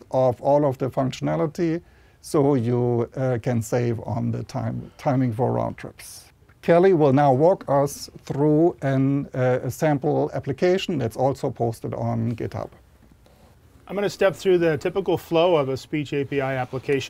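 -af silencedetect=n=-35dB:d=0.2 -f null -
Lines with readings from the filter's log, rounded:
silence_start: 1.79
silence_end: 2.25 | silence_duration: 0.46
silence_start: 6.19
silence_end: 6.63 | silence_duration: 0.44
silence_start: 12.66
silence_end: 13.88 | silence_duration: 1.22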